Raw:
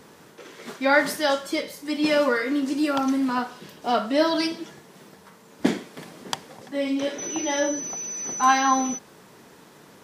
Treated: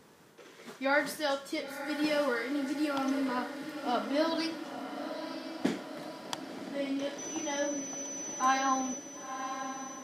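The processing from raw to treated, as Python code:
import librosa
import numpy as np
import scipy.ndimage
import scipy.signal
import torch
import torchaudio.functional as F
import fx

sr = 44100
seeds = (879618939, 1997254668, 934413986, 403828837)

y = fx.echo_diffused(x, sr, ms=992, feedback_pct=62, wet_db=-9.0)
y = F.gain(torch.from_numpy(y), -9.0).numpy()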